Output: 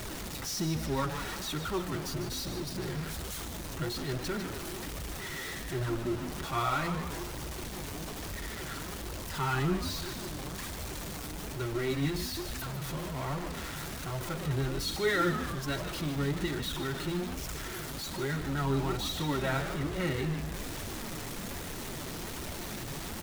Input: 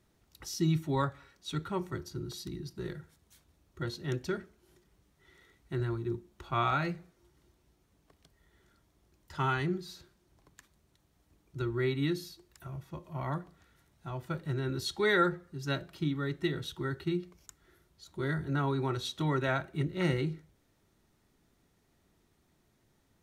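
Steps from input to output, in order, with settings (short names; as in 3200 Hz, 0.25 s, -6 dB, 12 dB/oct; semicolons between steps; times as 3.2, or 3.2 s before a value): zero-crossing step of -29.5 dBFS; flange 1.2 Hz, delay 1.3 ms, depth 6.4 ms, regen +42%; on a send: frequency-shifting echo 0.15 s, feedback 56%, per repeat -99 Hz, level -9 dB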